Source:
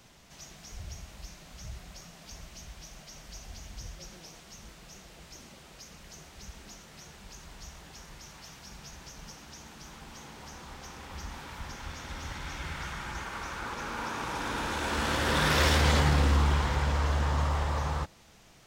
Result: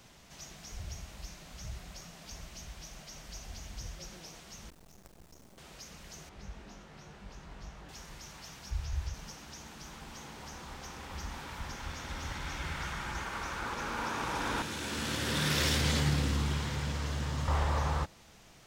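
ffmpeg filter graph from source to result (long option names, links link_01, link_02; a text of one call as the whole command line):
ffmpeg -i in.wav -filter_complex "[0:a]asettb=1/sr,asplit=3[link_01][link_02][link_03];[link_01]atrim=end=4.704[link_04];[link_02]atrim=start=4.7:end=5.58,asetpts=PTS-STARTPTS,afade=type=in:duration=0.004:curve=qsin,afade=type=out:start_time=0.876:duration=0.004:curve=qsin,equalizer=frequency=3000:width=0.39:gain=-12,aeval=exprs='val(0)+0.000398*(sin(2*PI*60*n/s)+sin(2*PI*2*60*n/s)/2+sin(2*PI*3*60*n/s)/3+sin(2*PI*4*60*n/s)/4+sin(2*PI*5*60*n/s)/5)':channel_layout=same,acrusher=bits=8:dc=4:mix=0:aa=0.000001[link_05];[link_03]atrim=start=5.576[link_06];[link_04][link_05]acrossfade=duration=0.004:curve1=hsin:curve2=qsin[link_07];[link_07][link_06]acrossfade=duration=0.004:curve1=qsin:curve2=hsin,asettb=1/sr,asplit=3[link_08][link_09][link_10];[link_08]atrim=end=6.294[link_11];[link_09]atrim=start=6.29:end=7.89,asetpts=PTS-STARTPTS,afade=type=in:duration=0.004:curve=qsin,afade=type=out:start_time=1.596:duration=0.004:curve=qsin,lowpass=frequency=1700:poles=1,asplit=2[link_12][link_13];[link_13]adelay=20,volume=-6dB[link_14];[link_12][link_14]amix=inputs=2:normalize=0,atrim=end_sample=70560[link_15];[link_10]atrim=start=7.886[link_16];[link_11][link_15]acrossfade=duration=0.004:curve1=hsin:curve2=qsin[link_17];[link_17][link_16]acrossfade=duration=0.004:curve1=qsin:curve2=hsin,asettb=1/sr,asplit=3[link_18][link_19][link_20];[link_18]atrim=end=8.704[link_21];[link_19]atrim=start=8.7:end=9.14,asetpts=PTS-STARTPTS,afade=type=in:duration=0.004:curve=qsin,afade=type=out:start_time=0.436:duration=0.004:curve=qsin,acrossover=split=5600[link_22][link_23];[link_23]acompressor=threshold=-57dB:ratio=4:attack=1:release=60[link_24];[link_22][link_24]amix=inputs=2:normalize=0,lowshelf=frequency=130:width_type=q:width=3:gain=13.5[link_25];[link_20]atrim=start=9.136[link_26];[link_21][link_25]acrossfade=duration=0.004:curve1=hsin:curve2=qsin[link_27];[link_27][link_26]acrossfade=duration=0.004:curve1=qsin:curve2=hsin,asettb=1/sr,asplit=3[link_28][link_29][link_30];[link_28]atrim=end=14.624[link_31];[link_29]atrim=start=14.62:end=17.48,asetpts=PTS-STARTPTS,afade=type=in:duration=0.004:curve=qsin,afade=type=out:start_time=2.856:duration=0.004:curve=qsin,highpass=frequency=89:width=0.5412,highpass=frequency=89:width=1.3066,equalizer=frequency=870:width=0.54:gain=-11[link_32];[link_30]atrim=start=17.476[link_33];[link_31][link_32]acrossfade=duration=0.004:curve1=hsin:curve2=qsin[link_34];[link_34][link_33]acrossfade=duration=0.004:curve1=qsin:curve2=hsin" out.wav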